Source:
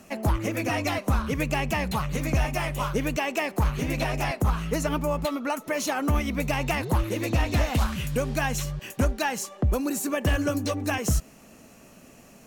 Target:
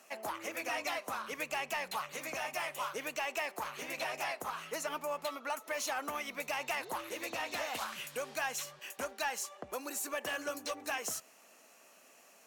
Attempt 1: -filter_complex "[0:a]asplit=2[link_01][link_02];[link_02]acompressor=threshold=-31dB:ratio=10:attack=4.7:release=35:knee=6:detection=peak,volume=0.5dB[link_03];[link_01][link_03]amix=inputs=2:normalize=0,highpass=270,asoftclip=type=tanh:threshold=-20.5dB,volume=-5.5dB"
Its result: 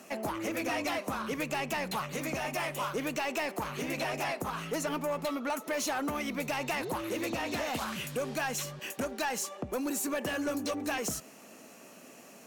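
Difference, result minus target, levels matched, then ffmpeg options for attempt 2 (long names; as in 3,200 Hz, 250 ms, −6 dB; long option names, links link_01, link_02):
downward compressor: peak gain reduction +12.5 dB; 250 Hz band +10.0 dB
-af "highpass=640,asoftclip=type=tanh:threshold=-20.5dB,volume=-5.5dB"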